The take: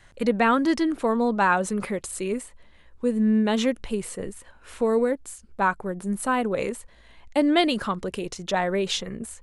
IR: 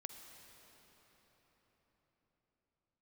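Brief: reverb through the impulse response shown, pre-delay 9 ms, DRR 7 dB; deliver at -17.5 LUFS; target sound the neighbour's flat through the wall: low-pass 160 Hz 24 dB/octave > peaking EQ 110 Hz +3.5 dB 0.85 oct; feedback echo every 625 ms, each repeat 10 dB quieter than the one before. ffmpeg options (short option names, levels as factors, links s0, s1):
-filter_complex "[0:a]aecho=1:1:625|1250|1875|2500:0.316|0.101|0.0324|0.0104,asplit=2[s0][s1];[1:a]atrim=start_sample=2205,adelay=9[s2];[s1][s2]afir=irnorm=-1:irlink=0,volume=0.708[s3];[s0][s3]amix=inputs=2:normalize=0,lowpass=f=160:w=0.5412,lowpass=f=160:w=1.3066,equalizer=f=110:t=o:w=0.85:g=3.5,volume=11.2"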